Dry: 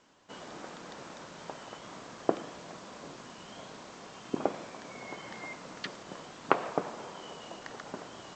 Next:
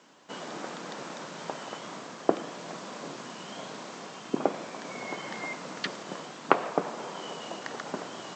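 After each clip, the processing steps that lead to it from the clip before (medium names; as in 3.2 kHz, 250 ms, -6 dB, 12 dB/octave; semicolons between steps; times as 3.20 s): high-pass 140 Hz 24 dB/octave; in parallel at +1 dB: gain riding within 3 dB 0.5 s; on the sum: trim -2 dB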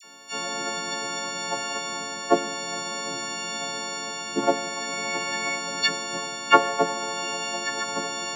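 partials quantised in pitch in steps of 4 st; phase dispersion lows, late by 41 ms, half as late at 1.7 kHz; trim +4 dB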